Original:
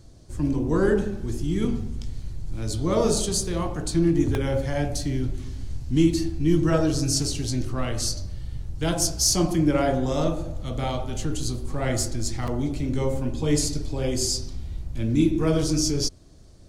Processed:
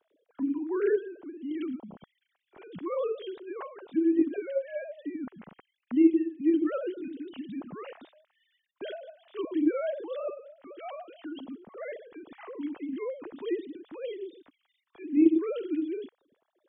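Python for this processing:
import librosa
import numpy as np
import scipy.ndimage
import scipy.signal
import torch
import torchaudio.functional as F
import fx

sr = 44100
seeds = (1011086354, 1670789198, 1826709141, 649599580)

y = fx.sine_speech(x, sr)
y = y * librosa.db_to_amplitude(-7.5)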